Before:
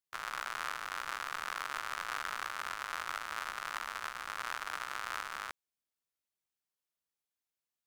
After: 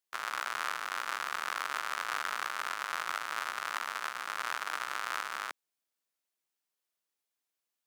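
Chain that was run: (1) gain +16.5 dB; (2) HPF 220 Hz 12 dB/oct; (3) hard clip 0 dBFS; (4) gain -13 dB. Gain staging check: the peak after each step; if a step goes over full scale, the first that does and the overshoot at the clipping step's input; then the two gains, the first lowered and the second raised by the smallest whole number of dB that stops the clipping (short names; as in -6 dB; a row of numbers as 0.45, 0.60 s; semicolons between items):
-3.0, -3.5, -3.5, -16.5 dBFS; no overload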